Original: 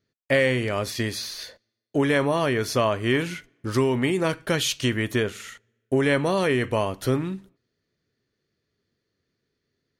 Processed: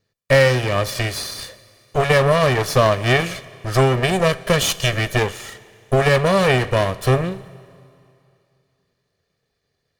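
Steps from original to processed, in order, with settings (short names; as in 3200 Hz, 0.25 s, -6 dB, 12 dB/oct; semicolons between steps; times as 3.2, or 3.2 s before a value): minimum comb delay 1.7 ms; added harmonics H 7 -30 dB, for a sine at -10.5 dBFS; Schroeder reverb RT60 2.6 s, combs from 30 ms, DRR 18.5 dB; gain +8 dB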